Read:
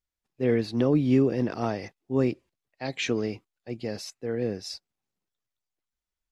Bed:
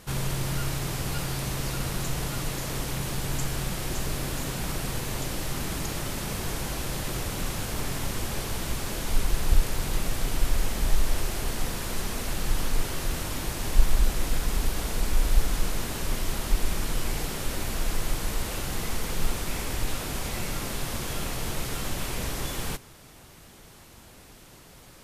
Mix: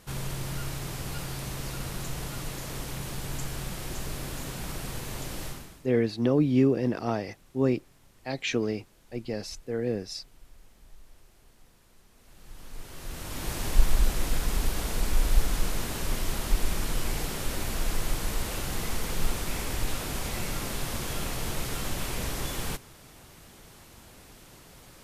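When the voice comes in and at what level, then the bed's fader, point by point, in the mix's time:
5.45 s, −0.5 dB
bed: 0:05.47 −5 dB
0:05.93 −29 dB
0:12.10 −29 dB
0:13.52 −1 dB

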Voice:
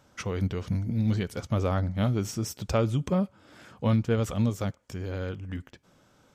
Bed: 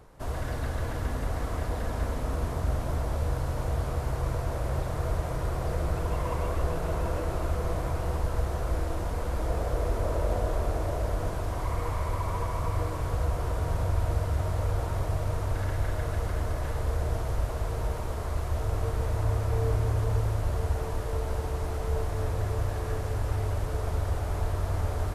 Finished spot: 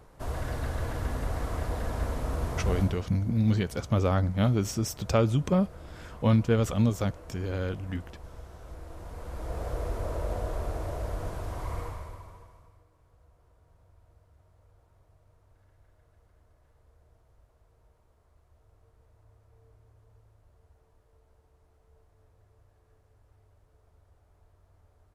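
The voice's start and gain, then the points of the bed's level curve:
2.40 s, +1.5 dB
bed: 0:02.80 −1 dB
0:03.07 −17 dB
0:08.59 −17 dB
0:09.67 −4.5 dB
0:11.79 −4.5 dB
0:12.85 −33.5 dB

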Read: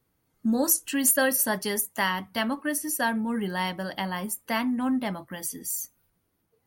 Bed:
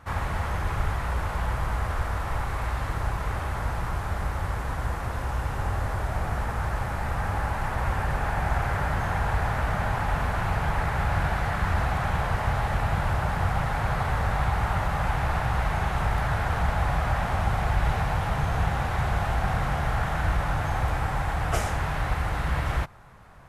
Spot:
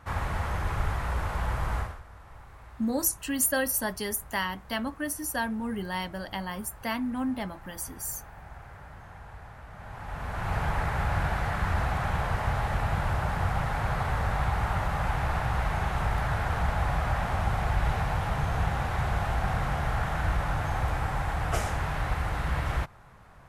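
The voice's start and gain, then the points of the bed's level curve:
2.35 s, −4.0 dB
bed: 0:01.80 −2 dB
0:02.02 −20 dB
0:09.69 −20 dB
0:10.56 −2.5 dB

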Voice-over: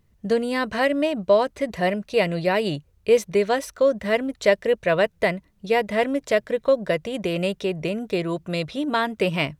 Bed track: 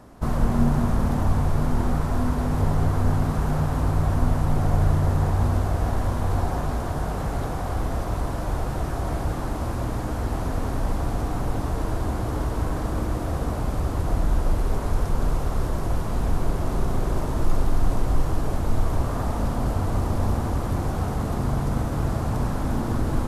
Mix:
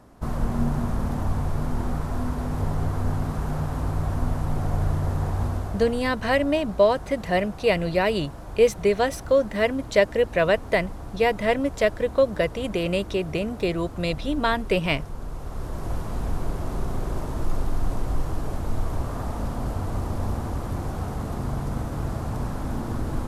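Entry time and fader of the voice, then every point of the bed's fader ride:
5.50 s, −0.5 dB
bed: 0:05.43 −4 dB
0:06.12 −11.5 dB
0:15.28 −11.5 dB
0:15.91 −4 dB

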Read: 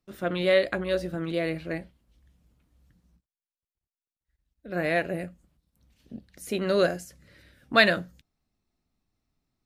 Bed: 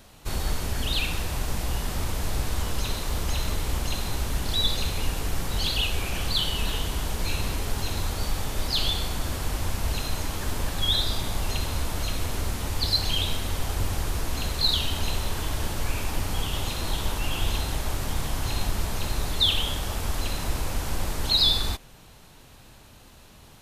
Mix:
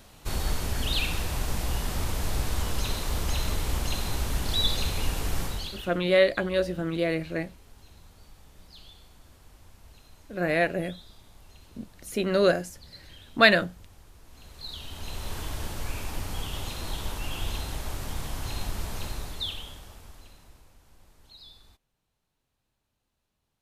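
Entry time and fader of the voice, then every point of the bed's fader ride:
5.65 s, +1.5 dB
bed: 0:05.44 −1 dB
0:06.03 −25 dB
0:14.20 −25 dB
0:15.33 −5.5 dB
0:19.03 −5.5 dB
0:20.77 −29.5 dB

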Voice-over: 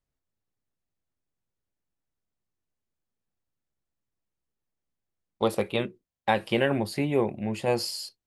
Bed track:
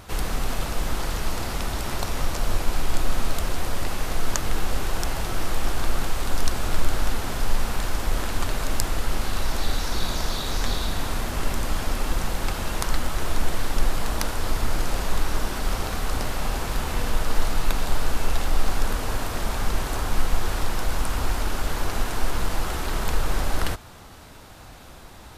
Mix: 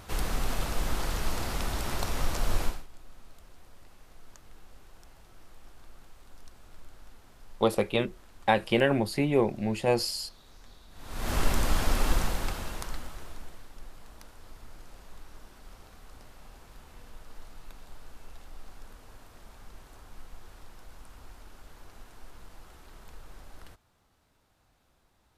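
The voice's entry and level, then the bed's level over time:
2.20 s, +0.5 dB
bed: 0:02.66 −4 dB
0:02.88 −28 dB
0:10.89 −28 dB
0:11.31 −0.5 dB
0:12.12 −0.5 dB
0:13.69 −24.5 dB

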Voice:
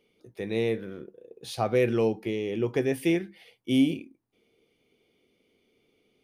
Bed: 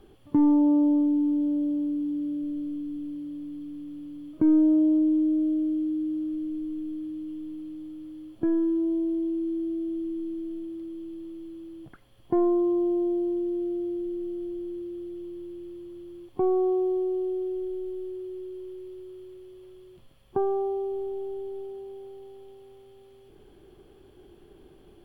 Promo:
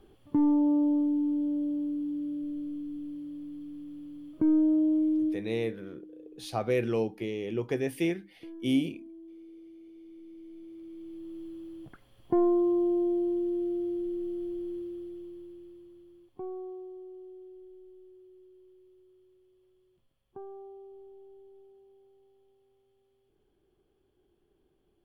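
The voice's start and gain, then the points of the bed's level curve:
4.95 s, −4.0 dB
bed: 0:05.28 −4 dB
0:05.50 −20.5 dB
0:09.92 −20.5 dB
0:11.38 −1.5 dB
0:14.76 −1.5 dB
0:16.91 −18.5 dB

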